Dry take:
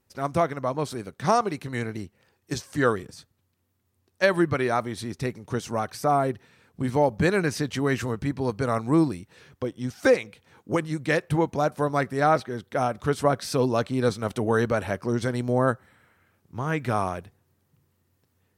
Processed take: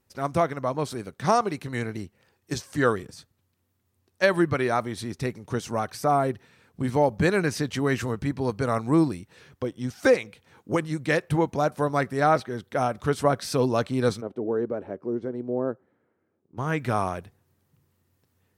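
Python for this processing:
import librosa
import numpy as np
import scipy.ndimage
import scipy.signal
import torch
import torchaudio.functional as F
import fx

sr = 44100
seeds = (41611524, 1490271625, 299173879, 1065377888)

y = fx.bandpass_q(x, sr, hz=360.0, q=1.7, at=(14.2, 16.57), fade=0.02)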